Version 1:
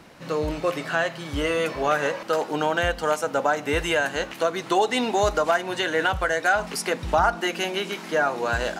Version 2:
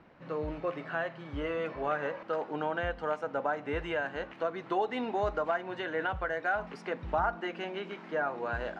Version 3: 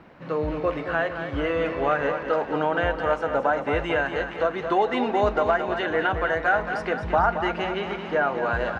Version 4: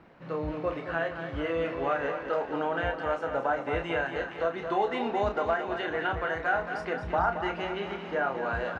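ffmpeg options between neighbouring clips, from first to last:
ffmpeg -i in.wav -af "lowpass=2100,volume=-9dB" out.wav
ffmpeg -i in.wav -af "aecho=1:1:223|446|669|892|1115|1338|1561:0.376|0.222|0.131|0.0772|0.0455|0.0269|0.0159,volume=8.5dB" out.wav
ffmpeg -i in.wav -filter_complex "[0:a]asplit=2[link_01][link_02];[link_02]adelay=30,volume=-6.5dB[link_03];[link_01][link_03]amix=inputs=2:normalize=0,volume=-6.5dB" out.wav

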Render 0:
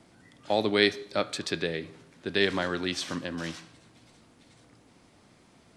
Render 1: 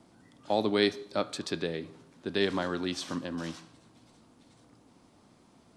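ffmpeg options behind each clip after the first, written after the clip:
ffmpeg -i in.wav -af "equalizer=frequency=250:width_type=o:width=1:gain=4,equalizer=frequency=1000:width_type=o:width=1:gain=4,equalizer=frequency=2000:width_type=o:width=1:gain=-5,volume=-3.5dB" out.wav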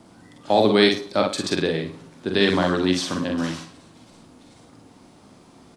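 ffmpeg -i in.wav -af "aecho=1:1:44|55|106:0.531|0.501|0.178,volume=8.5dB" out.wav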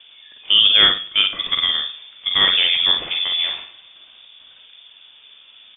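ffmpeg -i in.wav -af "lowpass=frequency=3100:width_type=q:width=0.5098,lowpass=frequency=3100:width_type=q:width=0.6013,lowpass=frequency=3100:width_type=q:width=0.9,lowpass=frequency=3100:width_type=q:width=2.563,afreqshift=-3700,volume=3.5dB" out.wav

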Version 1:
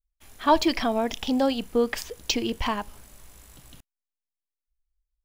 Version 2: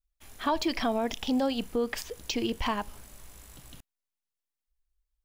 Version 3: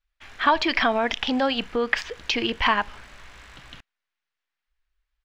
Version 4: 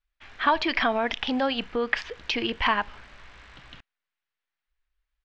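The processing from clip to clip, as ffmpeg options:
ffmpeg -i in.wav -af "alimiter=limit=-19dB:level=0:latency=1:release=149" out.wav
ffmpeg -i in.wav -af "firequalizer=gain_entry='entry(220,0);entry(1600,14);entry(11000,-19)':delay=0.05:min_phase=1,volume=1.5dB" out.wav
ffmpeg -i in.wav -af "lowpass=5100,volume=-2.5dB" out.wav

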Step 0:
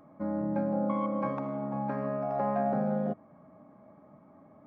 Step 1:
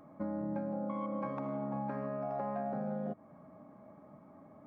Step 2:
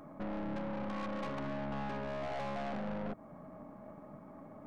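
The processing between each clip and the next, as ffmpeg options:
ffmpeg -i in.wav -af "acompressor=threshold=-34dB:ratio=6" out.wav
ffmpeg -i in.wav -af "aeval=exprs='(tanh(158*val(0)+0.55)-tanh(0.55))/158':channel_layout=same,volume=7dB" out.wav

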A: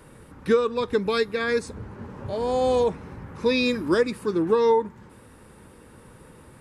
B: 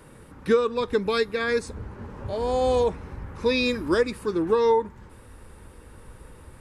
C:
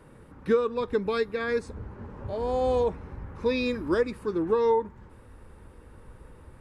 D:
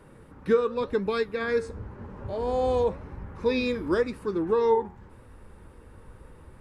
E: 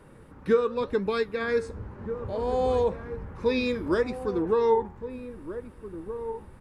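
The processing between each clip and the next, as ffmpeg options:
ffmpeg -i in.wav -af "asubboost=boost=6:cutoff=65" out.wav
ffmpeg -i in.wav -af "highshelf=frequency=2900:gain=-9.5,volume=-2.5dB" out.wav
ffmpeg -i in.wav -af "flanger=delay=4.9:depth=6.1:regen=83:speed=0.91:shape=sinusoidal,volume=5dB" out.wav
ffmpeg -i in.wav -filter_complex "[0:a]asplit=2[link_01][link_02];[link_02]adelay=1574,volume=-11dB,highshelf=frequency=4000:gain=-35.4[link_03];[link_01][link_03]amix=inputs=2:normalize=0" out.wav

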